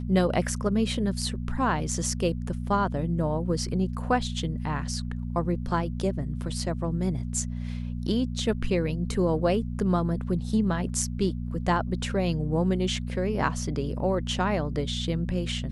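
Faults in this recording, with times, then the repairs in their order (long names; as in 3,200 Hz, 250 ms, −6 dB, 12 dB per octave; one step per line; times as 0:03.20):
mains hum 60 Hz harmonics 4 −32 dBFS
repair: hum removal 60 Hz, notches 4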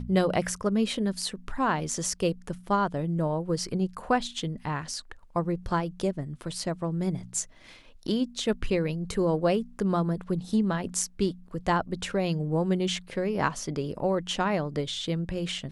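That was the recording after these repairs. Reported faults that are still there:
none of them is left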